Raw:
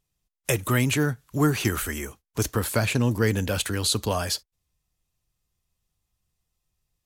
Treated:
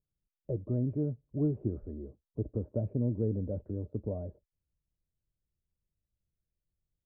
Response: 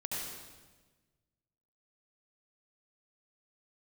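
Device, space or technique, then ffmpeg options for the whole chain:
under water: -af "lowpass=frequency=470:width=0.5412,lowpass=frequency=470:width=1.3066,equalizer=frequency=600:width_type=o:width=0.21:gain=10,volume=-7.5dB"

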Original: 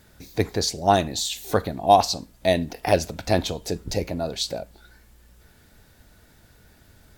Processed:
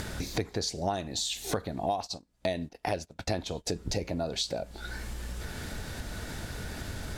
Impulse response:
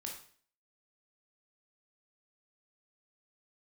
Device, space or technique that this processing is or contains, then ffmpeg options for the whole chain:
upward and downward compression: -filter_complex "[0:a]acompressor=mode=upward:threshold=-33dB:ratio=2.5,acompressor=threshold=-35dB:ratio=8,asplit=3[link_01][link_02][link_03];[link_01]afade=type=out:start_time=2.05:duration=0.02[link_04];[link_02]agate=range=-23dB:threshold=-42dB:ratio=16:detection=peak,afade=type=in:start_time=2.05:duration=0.02,afade=type=out:start_time=3.67:duration=0.02[link_05];[link_03]afade=type=in:start_time=3.67:duration=0.02[link_06];[link_04][link_05][link_06]amix=inputs=3:normalize=0,lowpass=10000,volume=6.5dB"

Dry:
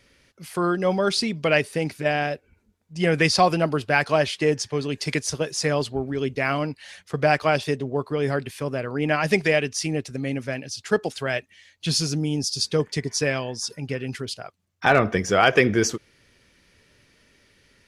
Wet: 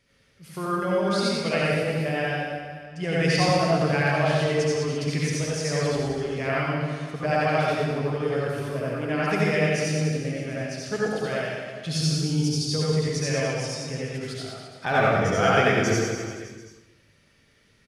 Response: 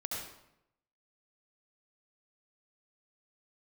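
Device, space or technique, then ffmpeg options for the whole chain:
bathroom: -filter_complex "[0:a]equalizer=frequency=150:width_type=o:width=0.67:gain=5,aecho=1:1:90|202.5|343.1|518.9|738.6:0.631|0.398|0.251|0.158|0.1[link_01];[1:a]atrim=start_sample=2205[link_02];[link_01][link_02]afir=irnorm=-1:irlink=0,volume=-6.5dB"

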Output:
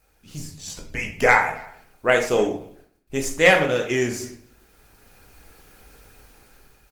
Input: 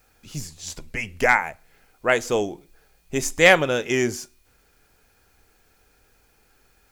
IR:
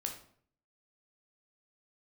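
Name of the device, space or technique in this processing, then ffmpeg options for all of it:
speakerphone in a meeting room: -filter_complex "[0:a]asettb=1/sr,asplit=3[link_01][link_02][link_03];[link_01]atrim=end=2.494[link_04];[link_02]atrim=start=2.49:end=3.72,asetpts=PTS-STARTPTS,afade=type=in:duration=0.004:curve=qsin,afade=type=out:start_time=1.226:duration=0.004:curve=qsin,agate=range=-57dB:threshold=-56dB:ratio=16:detection=peak[link_05];[link_03]atrim=start=3.716[link_06];[link_04][link_05]acrossfade=duration=0.004:curve1=hsin:curve2=qsin[link_07];[link_07][link_06]acrossfade=duration=0.004:curve1=qsin:curve2=hsin[link_08];[1:a]atrim=start_sample=2205[link_09];[link_08][link_09]afir=irnorm=-1:irlink=0,asplit=2[link_10][link_11];[link_11]adelay=280,highpass=300,lowpass=3400,asoftclip=type=hard:threshold=-11dB,volume=-25dB[link_12];[link_10][link_12]amix=inputs=2:normalize=0,dynaudnorm=framelen=210:gausssize=9:maxgain=13dB,volume=-1dB" -ar 48000 -c:a libopus -b:a 20k

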